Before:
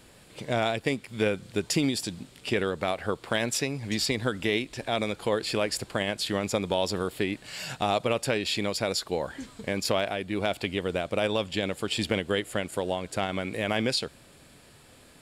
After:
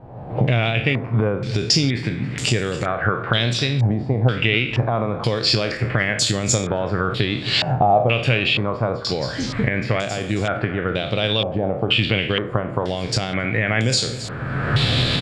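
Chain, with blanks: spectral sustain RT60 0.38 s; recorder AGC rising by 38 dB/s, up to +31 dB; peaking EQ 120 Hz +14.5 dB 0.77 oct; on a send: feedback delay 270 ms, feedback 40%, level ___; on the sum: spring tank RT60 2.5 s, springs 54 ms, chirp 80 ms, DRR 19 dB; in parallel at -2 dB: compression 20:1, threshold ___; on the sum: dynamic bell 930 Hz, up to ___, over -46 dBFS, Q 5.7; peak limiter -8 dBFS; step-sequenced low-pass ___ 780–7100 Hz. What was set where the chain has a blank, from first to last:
-17 dB, -31 dBFS, -5 dB, 2.1 Hz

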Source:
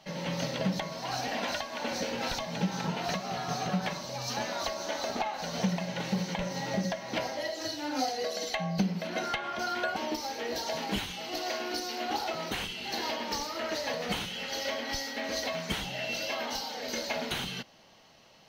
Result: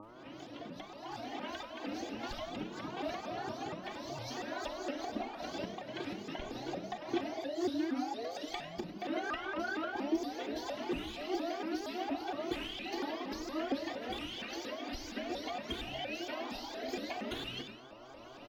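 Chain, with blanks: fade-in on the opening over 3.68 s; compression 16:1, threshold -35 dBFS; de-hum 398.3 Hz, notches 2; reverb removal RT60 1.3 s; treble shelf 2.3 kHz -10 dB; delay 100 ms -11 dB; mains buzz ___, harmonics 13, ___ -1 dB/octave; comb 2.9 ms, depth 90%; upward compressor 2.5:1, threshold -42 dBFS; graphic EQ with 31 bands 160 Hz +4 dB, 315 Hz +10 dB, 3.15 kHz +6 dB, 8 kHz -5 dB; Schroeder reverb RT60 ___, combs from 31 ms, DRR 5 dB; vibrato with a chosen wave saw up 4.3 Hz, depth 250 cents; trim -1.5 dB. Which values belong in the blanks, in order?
120 Hz, -63 dBFS, 0.9 s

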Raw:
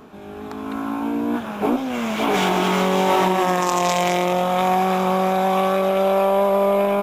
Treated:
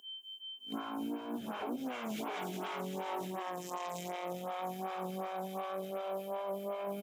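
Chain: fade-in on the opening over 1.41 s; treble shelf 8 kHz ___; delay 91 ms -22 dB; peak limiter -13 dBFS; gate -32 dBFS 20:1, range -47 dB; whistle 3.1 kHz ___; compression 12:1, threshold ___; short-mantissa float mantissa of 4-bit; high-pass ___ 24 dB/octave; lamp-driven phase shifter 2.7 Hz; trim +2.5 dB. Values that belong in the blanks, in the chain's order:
+7 dB, -42 dBFS, -36 dBFS, 100 Hz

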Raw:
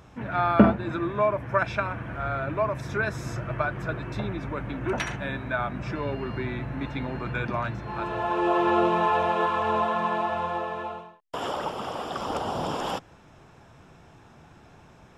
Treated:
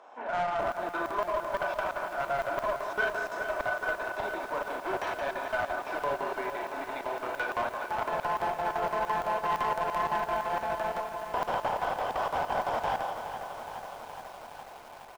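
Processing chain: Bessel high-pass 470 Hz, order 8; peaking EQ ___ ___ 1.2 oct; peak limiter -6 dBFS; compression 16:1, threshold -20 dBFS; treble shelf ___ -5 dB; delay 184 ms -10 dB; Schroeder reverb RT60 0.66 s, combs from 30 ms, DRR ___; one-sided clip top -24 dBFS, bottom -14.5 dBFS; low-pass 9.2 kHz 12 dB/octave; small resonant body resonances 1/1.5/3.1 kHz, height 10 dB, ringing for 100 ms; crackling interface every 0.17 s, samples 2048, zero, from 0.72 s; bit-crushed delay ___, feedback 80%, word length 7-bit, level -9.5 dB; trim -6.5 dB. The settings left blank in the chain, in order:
720 Hz, +14.5 dB, 4.7 kHz, 2 dB, 418 ms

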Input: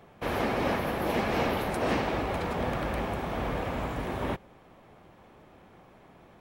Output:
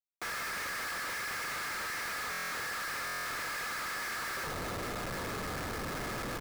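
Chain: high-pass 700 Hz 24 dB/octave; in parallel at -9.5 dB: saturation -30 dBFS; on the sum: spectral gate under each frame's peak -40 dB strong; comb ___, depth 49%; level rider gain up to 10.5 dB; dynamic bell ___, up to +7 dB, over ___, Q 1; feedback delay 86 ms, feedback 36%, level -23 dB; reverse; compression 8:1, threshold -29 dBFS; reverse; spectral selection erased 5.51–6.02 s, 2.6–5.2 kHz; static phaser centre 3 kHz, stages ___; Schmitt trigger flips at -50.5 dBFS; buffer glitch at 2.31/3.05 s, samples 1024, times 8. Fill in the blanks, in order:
2.4 ms, 1.6 kHz, -36 dBFS, 6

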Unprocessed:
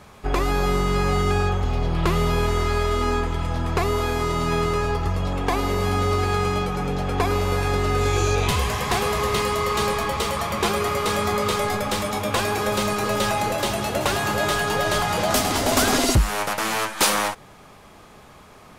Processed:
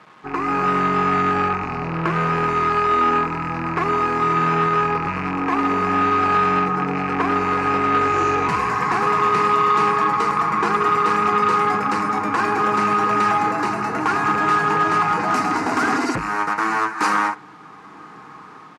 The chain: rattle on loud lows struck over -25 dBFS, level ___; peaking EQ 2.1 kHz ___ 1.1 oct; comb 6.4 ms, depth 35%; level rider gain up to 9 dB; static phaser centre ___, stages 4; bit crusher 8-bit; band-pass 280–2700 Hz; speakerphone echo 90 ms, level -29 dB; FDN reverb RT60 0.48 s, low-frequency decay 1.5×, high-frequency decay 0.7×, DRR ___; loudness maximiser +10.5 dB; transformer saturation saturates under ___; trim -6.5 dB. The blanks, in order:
-17 dBFS, -5.5 dB, 1.4 kHz, 18.5 dB, 710 Hz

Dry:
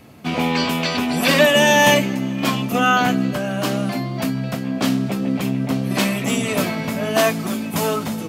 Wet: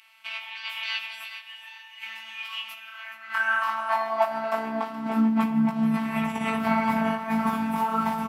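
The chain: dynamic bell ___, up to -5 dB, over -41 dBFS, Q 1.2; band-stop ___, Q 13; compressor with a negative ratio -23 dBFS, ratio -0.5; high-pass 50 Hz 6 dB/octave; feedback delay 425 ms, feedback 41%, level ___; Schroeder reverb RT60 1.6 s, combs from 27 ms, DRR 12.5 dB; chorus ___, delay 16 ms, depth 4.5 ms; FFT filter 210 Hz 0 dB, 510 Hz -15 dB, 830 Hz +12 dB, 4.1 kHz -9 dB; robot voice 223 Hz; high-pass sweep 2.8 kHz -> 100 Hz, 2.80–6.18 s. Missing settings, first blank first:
7.5 kHz, 6.6 kHz, -14 dB, 1.6 Hz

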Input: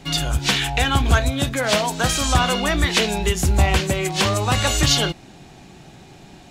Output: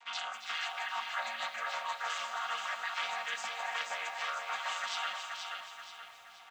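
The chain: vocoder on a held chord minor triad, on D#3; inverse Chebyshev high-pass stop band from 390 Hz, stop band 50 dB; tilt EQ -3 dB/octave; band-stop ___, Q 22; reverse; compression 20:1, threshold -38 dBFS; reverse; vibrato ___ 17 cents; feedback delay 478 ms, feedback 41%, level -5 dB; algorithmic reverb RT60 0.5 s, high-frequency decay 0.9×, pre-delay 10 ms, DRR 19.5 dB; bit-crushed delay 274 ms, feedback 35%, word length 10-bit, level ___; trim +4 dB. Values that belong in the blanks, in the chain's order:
4.5 kHz, 13 Hz, -10 dB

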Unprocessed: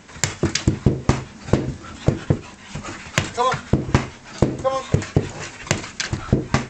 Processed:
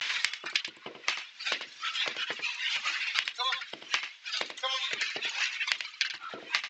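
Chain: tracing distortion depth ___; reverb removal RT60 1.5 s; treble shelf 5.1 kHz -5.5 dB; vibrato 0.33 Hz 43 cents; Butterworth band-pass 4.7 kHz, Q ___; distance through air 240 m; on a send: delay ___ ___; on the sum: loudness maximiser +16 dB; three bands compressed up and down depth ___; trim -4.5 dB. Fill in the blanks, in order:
0.071 ms, 0.94, 89 ms, -10.5 dB, 100%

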